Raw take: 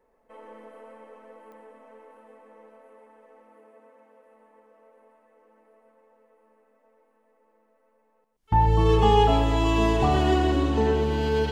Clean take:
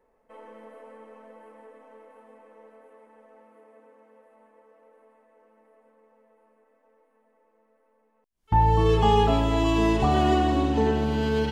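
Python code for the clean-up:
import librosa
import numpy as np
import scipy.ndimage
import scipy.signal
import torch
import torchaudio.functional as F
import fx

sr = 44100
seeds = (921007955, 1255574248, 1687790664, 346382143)

y = fx.fix_declick_ar(x, sr, threshold=10.0)
y = fx.fix_echo_inverse(y, sr, delay_ms=125, level_db=-8.0)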